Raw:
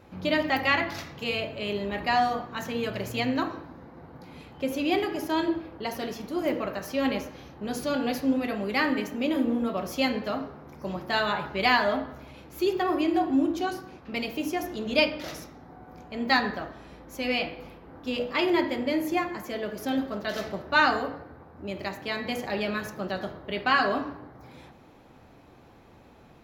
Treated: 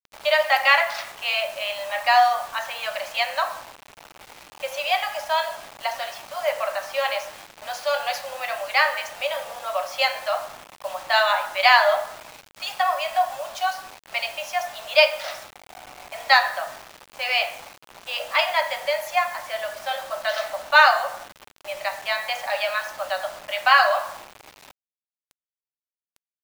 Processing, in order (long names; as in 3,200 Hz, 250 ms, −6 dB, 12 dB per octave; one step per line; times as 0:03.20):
low-pass that shuts in the quiet parts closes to 2,000 Hz, open at −21.5 dBFS
Butterworth high-pass 560 Hz 96 dB per octave
bit-depth reduction 8 bits, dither none
level +7.5 dB